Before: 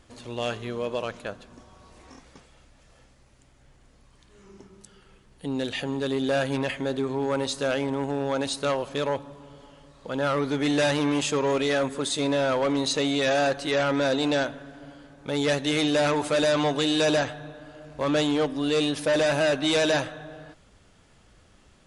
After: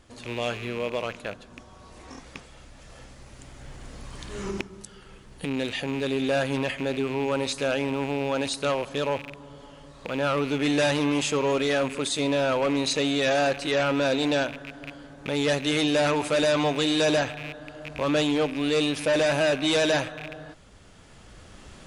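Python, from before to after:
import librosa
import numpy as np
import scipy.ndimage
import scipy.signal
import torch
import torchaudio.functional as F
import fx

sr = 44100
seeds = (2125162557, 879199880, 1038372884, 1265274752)

y = fx.rattle_buzz(x, sr, strikes_db=-44.0, level_db=-27.0)
y = fx.recorder_agc(y, sr, target_db=-22.0, rise_db_per_s=6.5, max_gain_db=30)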